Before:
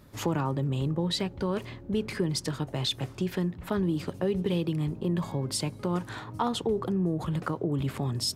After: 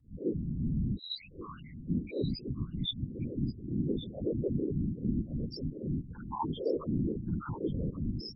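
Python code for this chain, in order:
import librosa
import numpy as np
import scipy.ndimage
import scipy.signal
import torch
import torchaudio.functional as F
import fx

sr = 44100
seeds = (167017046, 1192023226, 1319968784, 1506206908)

y = fx.spec_swells(x, sr, rise_s=0.44)
y = scipy.signal.sosfilt(scipy.signal.butter(4, 5300.0, 'lowpass', fs=sr, output='sos'), y)
y = fx.comb_fb(y, sr, f0_hz=340.0, decay_s=0.22, harmonics='all', damping=0.0, mix_pct=40)
y = fx.mod_noise(y, sr, seeds[0], snr_db=14)
y = fx.cheby2_bandstop(y, sr, low_hz=120.0, high_hz=630.0, order=4, stop_db=40, at=(0.97, 1.88))
y = fx.spec_topn(y, sr, count=1)
y = fx.whisperise(y, sr, seeds[1])
y = y + 10.0 ** (-13.5 / 20.0) * np.pad(y, (int(1133 * sr / 1000.0), 0))[:len(y)]
y = y * librosa.db_to_amplitude(6.0)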